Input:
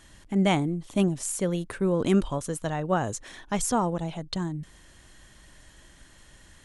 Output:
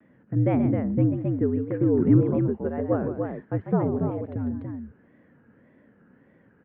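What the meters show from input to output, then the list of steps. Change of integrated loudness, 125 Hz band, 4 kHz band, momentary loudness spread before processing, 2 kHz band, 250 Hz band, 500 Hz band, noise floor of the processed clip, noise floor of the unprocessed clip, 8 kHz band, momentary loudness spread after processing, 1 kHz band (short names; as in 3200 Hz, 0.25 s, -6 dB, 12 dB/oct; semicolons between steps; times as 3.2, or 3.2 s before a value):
+2.5 dB, +5.5 dB, under -25 dB, 9 LU, -8.5 dB, +3.5 dB, +2.0 dB, -60 dBFS, -54 dBFS, under -40 dB, 11 LU, -6.0 dB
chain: resonant low shelf 690 Hz +8 dB, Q 1.5; on a send: loudspeakers at several distances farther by 47 m -10 dB, 96 m -5 dB; on the sum: mistuned SSB -69 Hz 200–2100 Hz; wow and flutter 150 cents; bell 210 Hz +4.5 dB 1 oct; gain -6.5 dB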